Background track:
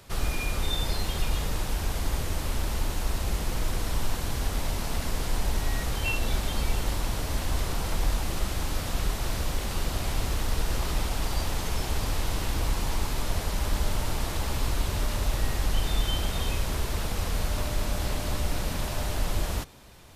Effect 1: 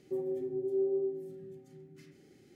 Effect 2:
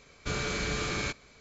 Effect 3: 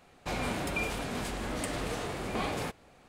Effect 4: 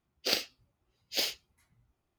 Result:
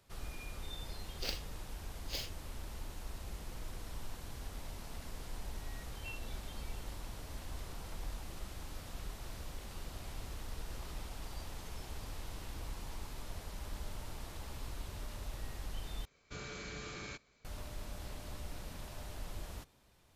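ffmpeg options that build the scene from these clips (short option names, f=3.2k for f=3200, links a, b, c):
-filter_complex "[0:a]volume=-16.5dB,asplit=2[a][b];[a]atrim=end=16.054[c];[2:a]atrim=end=1.4,asetpts=PTS-STARTPTS,volume=-13.5dB[d];[b]atrim=start=17.446[e];[4:a]atrim=end=2.18,asetpts=PTS-STARTPTS,volume=-11dB,afade=t=in:d=0.004:c=hsin,afade=t=out:st=2.176:d=0.004:c=hsin,adelay=960[f];[c][d]acrossfade=d=0.004:c1=hsin:c2=hsin[g];[g][e]acrossfade=d=0.004:c1=hsin:c2=hsin[h];[h][f]amix=inputs=2:normalize=0"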